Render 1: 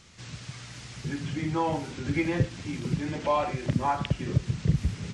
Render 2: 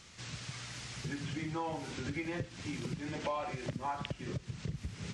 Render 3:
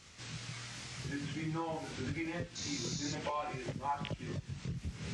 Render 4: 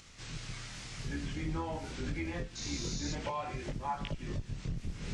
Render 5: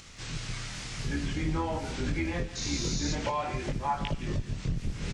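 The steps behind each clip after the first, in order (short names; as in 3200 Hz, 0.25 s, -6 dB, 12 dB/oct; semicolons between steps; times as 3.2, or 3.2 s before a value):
compressor 6:1, threshold -32 dBFS, peak gain reduction 14.5 dB; low shelf 440 Hz -4.5 dB
painted sound noise, 2.55–3.13, 3500–7100 Hz -42 dBFS; chorus voices 2, 0.49 Hz, delay 22 ms, depth 3.2 ms; gain +2 dB
octaver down 2 oct, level +1 dB; upward compressor, threshold -56 dBFS
echo 0.17 s -14.5 dB; gain +6 dB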